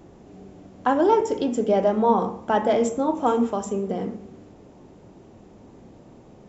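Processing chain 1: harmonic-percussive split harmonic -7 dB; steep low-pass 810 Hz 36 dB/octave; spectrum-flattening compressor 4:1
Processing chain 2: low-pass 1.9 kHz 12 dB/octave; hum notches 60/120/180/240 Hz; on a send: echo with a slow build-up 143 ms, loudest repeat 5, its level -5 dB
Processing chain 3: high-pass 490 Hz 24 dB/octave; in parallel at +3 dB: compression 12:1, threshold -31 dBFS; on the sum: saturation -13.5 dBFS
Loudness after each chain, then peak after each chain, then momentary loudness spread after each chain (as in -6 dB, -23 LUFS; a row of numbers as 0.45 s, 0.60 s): -32.0 LUFS, -18.5 LUFS, -24.5 LUFS; -14.0 dBFS, -4.0 dBFS, -13.5 dBFS; 6 LU, 12 LU, 7 LU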